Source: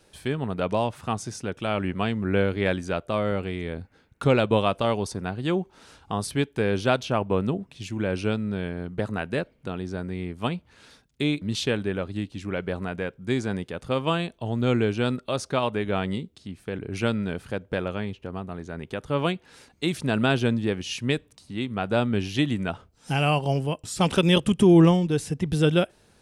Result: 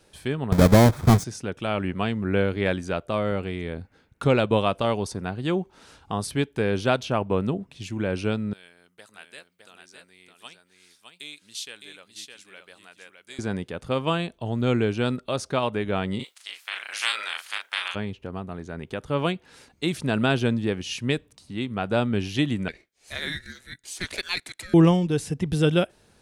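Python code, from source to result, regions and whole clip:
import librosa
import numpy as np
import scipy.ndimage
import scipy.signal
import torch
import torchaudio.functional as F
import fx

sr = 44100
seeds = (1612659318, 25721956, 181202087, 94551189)

y = fx.chain(x, sr, fx.halfwave_hold(),
    fx.low_shelf(hz=490.0, db=9.5),
    fx.notch(hz=2800.0, q=6.4), at=(0.52, 1.24))
y = fx.chain(y, sr, fx.differentiator(),
    fx.echo_single(ms=611, db=-5.5), at=(8.53, 13.39))
y = fx.spec_clip(y, sr, under_db=27, at=(16.19, 17.94), fade=0.02)
y = fx.highpass(y, sr, hz=1400.0, slope=12, at=(16.19, 17.94), fade=0.02)
y = fx.doubler(y, sr, ms=38.0, db=-4.5, at=(16.19, 17.94), fade=0.02)
y = fx.chain(y, sr, fx.highpass(hz=920.0, slope=24),
    fx.ring_mod(carrier_hz=910.0), at=(22.68, 24.74))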